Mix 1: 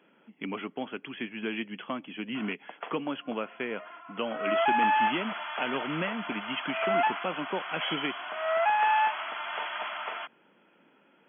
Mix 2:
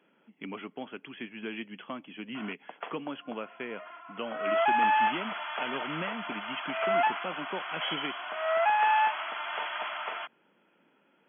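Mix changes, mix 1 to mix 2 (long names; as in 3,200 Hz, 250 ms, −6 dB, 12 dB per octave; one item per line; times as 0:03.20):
speech −5.5 dB
reverb: on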